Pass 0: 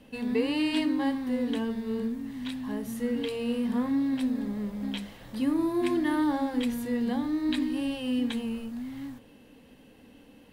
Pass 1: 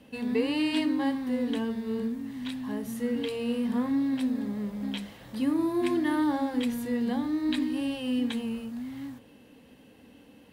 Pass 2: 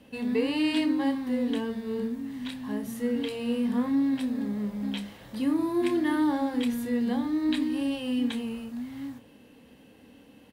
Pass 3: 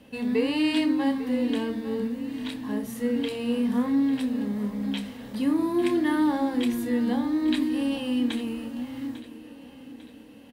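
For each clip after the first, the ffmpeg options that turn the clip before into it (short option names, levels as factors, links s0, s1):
-af "highpass=53"
-filter_complex "[0:a]asplit=2[s0][s1];[s1]adelay=29,volume=0.299[s2];[s0][s2]amix=inputs=2:normalize=0"
-af "aecho=1:1:848|1696|2544|3392:0.168|0.0823|0.0403|0.0198,volume=1.26"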